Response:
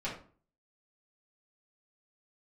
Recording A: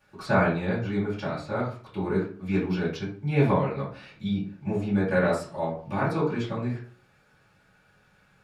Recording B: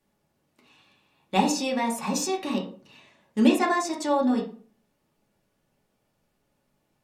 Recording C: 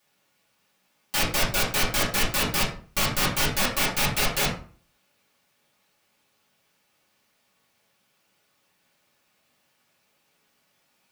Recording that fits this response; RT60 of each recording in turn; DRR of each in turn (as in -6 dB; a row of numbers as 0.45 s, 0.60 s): C; 0.45 s, 0.45 s, 0.45 s; -14.5 dB, -2.0 dB, -9.0 dB